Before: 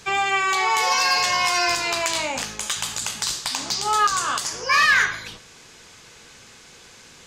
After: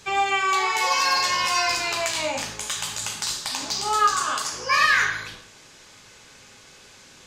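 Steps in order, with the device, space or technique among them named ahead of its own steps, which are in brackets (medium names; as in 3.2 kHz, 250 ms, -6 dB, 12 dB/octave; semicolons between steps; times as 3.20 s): bathroom (reverberation RT60 0.70 s, pre-delay 3 ms, DRR 2.5 dB); trim -3.5 dB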